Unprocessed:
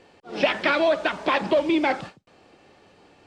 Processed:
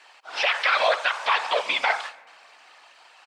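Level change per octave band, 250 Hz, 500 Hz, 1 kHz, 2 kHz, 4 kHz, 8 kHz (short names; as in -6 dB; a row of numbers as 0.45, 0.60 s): -27.0 dB, -5.5 dB, +2.0 dB, +3.5 dB, +5.0 dB, n/a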